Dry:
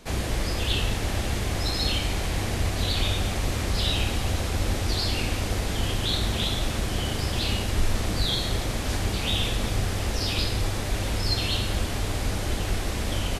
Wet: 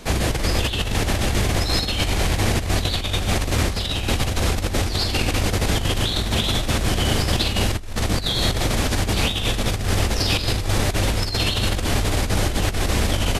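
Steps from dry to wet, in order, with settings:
compressor whose output falls as the input rises −27 dBFS, ratio −0.5
level +7 dB

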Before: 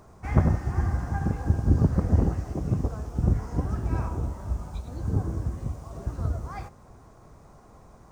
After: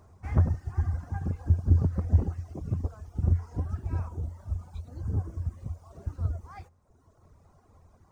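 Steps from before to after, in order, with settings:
reverb reduction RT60 1.3 s
parametric band 86 Hz +13.5 dB 0.34 octaves
level −7 dB

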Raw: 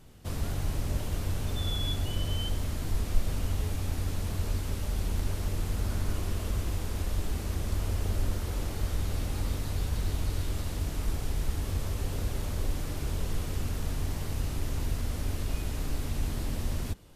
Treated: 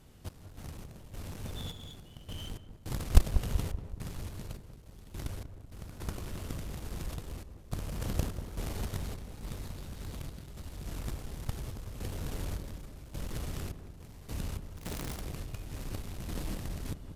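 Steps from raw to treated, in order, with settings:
0:14.77–0:15.21: wrap-around overflow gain 26 dB
harmonic generator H 3 −9 dB, 6 −30 dB, 7 −31 dB, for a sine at −11.5 dBFS
sample-and-hold tremolo 3.5 Hz, depth 95%
feedback echo with a low-pass in the loop 191 ms, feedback 56%, low-pass 980 Hz, level −9 dB
level +10.5 dB

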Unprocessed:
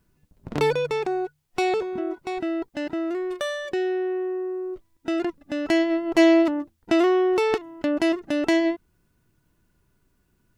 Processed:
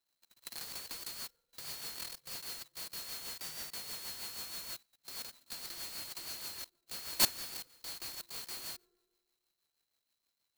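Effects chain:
neighbouring bands swapped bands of 4,000 Hz
brickwall limiter −14 dBFS, peak gain reduction 9 dB
output level in coarse steps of 20 dB
bucket-brigade delay 93 ms, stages 1,024, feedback 68%, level −7 dB
on a send at −23 dB: convolution reverb RT60 1.1 s, pre-delay 3 ms
on the sum: rotating-speaker cabinet horn 6.3 Hz
converter with an unsteady clock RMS 0.042 ms
level −1 dB

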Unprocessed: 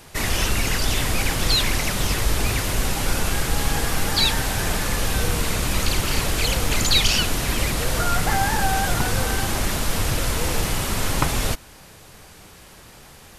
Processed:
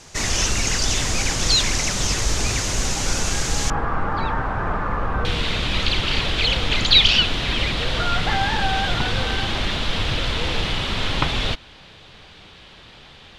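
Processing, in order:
low-pass with resonance 6,500 Hz, resonance Q 3, from 0:03.70 1,200 Hz, from 0:05.25 3,500 Hz
level −1 dB

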